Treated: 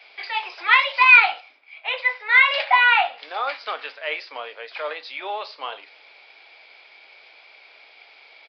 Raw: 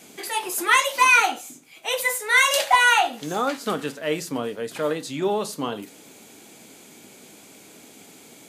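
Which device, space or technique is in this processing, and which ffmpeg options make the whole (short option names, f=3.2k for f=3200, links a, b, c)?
musical greeting card: -filter_complex "[0:a]asettb=1/sr,asplit=3[a][b][c];[a]atrim=end=1.404[d];[b]atrim=start=1.4:end=3.18,asetpts=PTS-STARTPTS,afade=t=in:d=0.004:c=qsin,afade=t=out:st=1.776:d=0.004:c=qsin,bass=f=250:g=-1,treble=f=4k:g=-10[e];[c]atrim=start=3.176[f];[d][e]acrossfade=d=0.004:c1=hsin:c2=qsin[g];[g][f]acrossfade=d=0.004:c1=qsin:c2=hsin,aresample=11025,aresample=44100,highpass=f=620:w=0.5412,highpass=f=620:w=1.3066,equalizer=f=2.3k:t=o:w=0.33:g=9"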